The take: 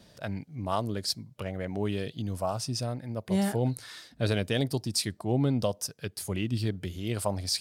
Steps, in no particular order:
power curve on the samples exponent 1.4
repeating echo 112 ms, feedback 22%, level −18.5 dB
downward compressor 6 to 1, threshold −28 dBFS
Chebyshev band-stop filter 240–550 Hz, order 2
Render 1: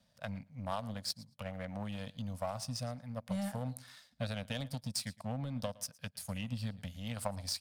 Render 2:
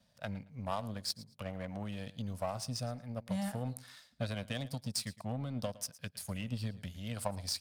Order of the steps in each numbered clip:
repeating echo, then downward compressor, then power curve on the samples, then Chebyshev band-stop filter
downward compressor, then Chebyshev band-stop filter, then power curve on the samples, then repeating echo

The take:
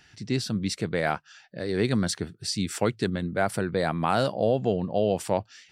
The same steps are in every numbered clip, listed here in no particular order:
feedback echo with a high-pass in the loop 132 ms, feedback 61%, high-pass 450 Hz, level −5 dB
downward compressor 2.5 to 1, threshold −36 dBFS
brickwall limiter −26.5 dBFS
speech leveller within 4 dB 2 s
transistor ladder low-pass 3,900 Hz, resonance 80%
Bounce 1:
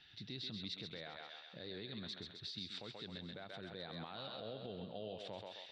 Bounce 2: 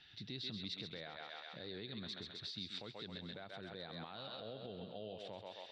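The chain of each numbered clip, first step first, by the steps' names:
downward compressor, then feedback echo with a high-pass in the loop, then brickwall limiter, then transistor ladder low-pass, then speech leveller
feedback echo with a high-pass in the loop, then downward compressor, then brickwall limiter, then speech leveller, then transistor ladder low-pass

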